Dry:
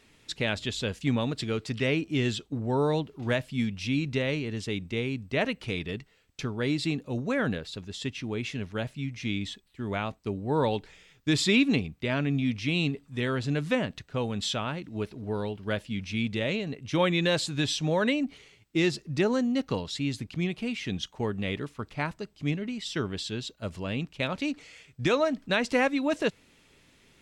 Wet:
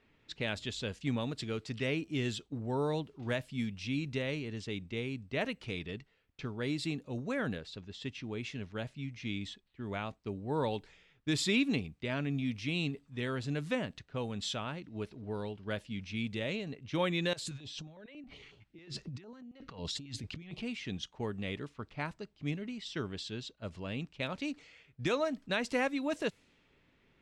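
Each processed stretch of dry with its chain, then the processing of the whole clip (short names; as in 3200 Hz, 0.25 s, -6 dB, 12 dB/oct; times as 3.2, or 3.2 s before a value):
17.33–20.62 negative-ratio compressor -38 dBFS + stepped notch 11 Hz 230–2100 Hz
whole clip: low-pass opened by the level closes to 2400 Hz, open at -24.5 dBFS; high shelf 9000 Hz +5.5 dB; gain -7 dB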